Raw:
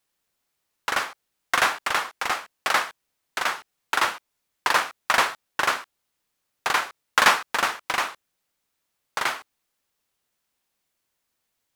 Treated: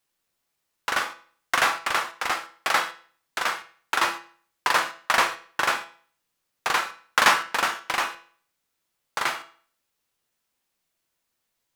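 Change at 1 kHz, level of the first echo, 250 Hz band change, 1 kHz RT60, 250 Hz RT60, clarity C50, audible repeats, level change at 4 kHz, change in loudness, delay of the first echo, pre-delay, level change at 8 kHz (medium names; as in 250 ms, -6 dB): -0.5 dB, no echo, 0.0 dB, 0.50 s, 0.50 s, 14.5 dB, no echo, -0.5 dB, -0.5 dB, no echo, 6 ms, -0.5 dB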